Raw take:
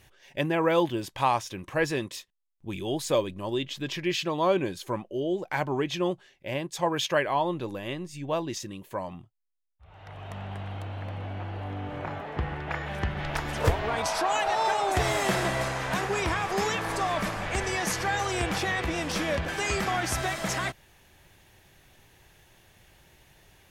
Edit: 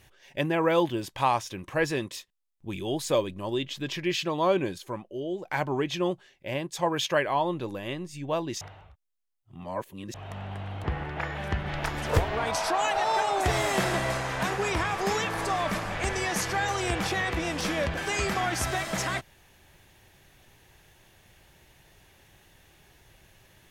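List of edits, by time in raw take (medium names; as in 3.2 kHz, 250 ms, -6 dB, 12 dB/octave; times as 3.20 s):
4.78–5.45 s: gain -4 dB
8.61–10.14 s: reverse
10.84–12.35 s: delete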